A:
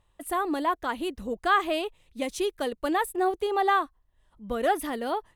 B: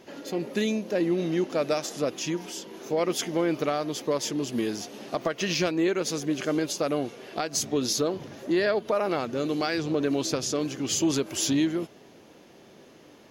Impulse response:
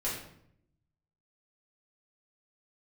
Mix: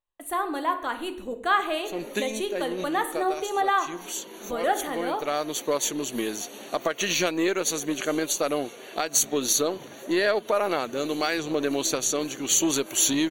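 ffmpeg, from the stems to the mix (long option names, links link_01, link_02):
-filter_complex "[0:a]agate=range=-21dB:threshold=-54dB:ratio=16:detection=peak,volume=-1dB,asplit=3[link_01][link_02][link_03];[link_02]volume=-10dB[link_04];[1:a]highshelf=frequency=7800:gain=10.5,aeval=exprs='0.299*(cos(1*acos(clip(val(0)/0.299,-1,1)))-cos(1*PI/2))+0.0211*(cos(2*acos(clip(val(0)/0.299,-1,1)))-cos(2*PI/2))+0.0335*(cos(5*acos(clip(val(0)/0.299,-1,1)))-cos(5*PI/2))+0.0237*(cos(7*acos(clip(val(0)/0.299,-1,1)))-cos(7*PI/2))+0.00473*(cos(8*acos(clip(val(0)/0.299,-1,1)))-cos(8*PI/2))':channel_layout=same,adelay=1600,volume=2dB[link_05];[link_03]apad=whole_len=657160[link_06];[link_05][link_06]sidechaincompress=threshold=-35dB:ratio=10:attack=16:release=250[link_07];[2:a]atrim=start_sample=2205[link_08];[link_04][link_08]afir=irnorm=-1:irlink=0[link_09];[link_01][link_07][link_09]amix=inputs=3:normalize=0,asuperstop=centerf=5100:order=12:qfactor=5.1,equalizer=frequency=78:width=0.39:gain=-12.5"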